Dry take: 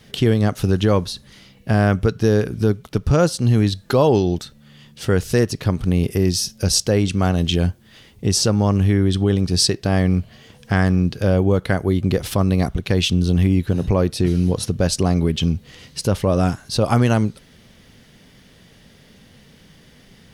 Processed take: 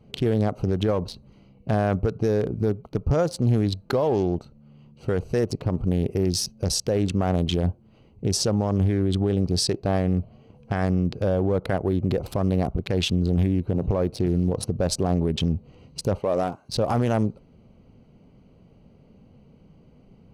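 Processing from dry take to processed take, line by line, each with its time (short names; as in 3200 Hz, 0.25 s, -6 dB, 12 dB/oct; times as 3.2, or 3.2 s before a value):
16.19–16.69 HPF 520 Hz 6 dB/oct
whole clip: Wiener smoothing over 25 samples; dynamic EQ 650 Hz, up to +7 dB, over -33 dBFS, Q 0.8; limiter -11.5 dBFS; gain -2.5 dB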